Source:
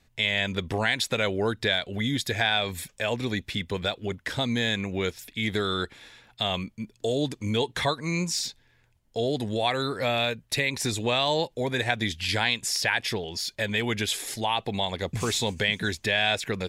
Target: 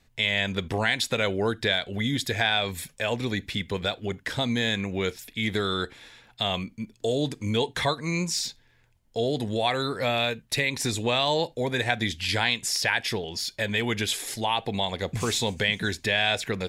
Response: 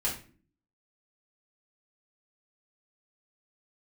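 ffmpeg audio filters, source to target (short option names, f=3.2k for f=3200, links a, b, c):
-filter_complex "[0:a]asplit=2[a][b];[1:a]atrim=start_sample=2205,atrim=end_sample=3969[c];[b][c]afir=irnorm=-1:irlink=0,volume=-23.5dB[d];[a][d]amix=inputs=2:normalize=0"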